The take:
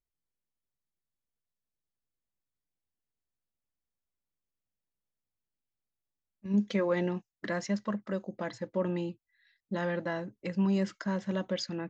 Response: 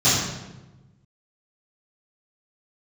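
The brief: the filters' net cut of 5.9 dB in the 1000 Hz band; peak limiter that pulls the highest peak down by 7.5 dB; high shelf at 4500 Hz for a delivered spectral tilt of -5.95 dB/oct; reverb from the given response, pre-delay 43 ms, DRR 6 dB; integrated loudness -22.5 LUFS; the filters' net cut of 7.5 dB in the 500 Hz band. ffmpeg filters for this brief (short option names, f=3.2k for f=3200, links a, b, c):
-filter_complex "[0:a]equalizer=f=500:t=o:g=-8.5,equalizer=f=1k:t=o:g=-5,highshelf=f=4.5k:g=6.5,alimiter=level_in=3dB:limit=-24dB:level=0:latency=1,volume=-3dB,asplit=2[a][b];[1:a]atrim=start_sample=2205,adelay=43[c];[b][c]afir=irnorm=-1:irlink=0,volume=-25.5dB[d];[a][d]amix=inputs=2:normalize=0,volume=12dB"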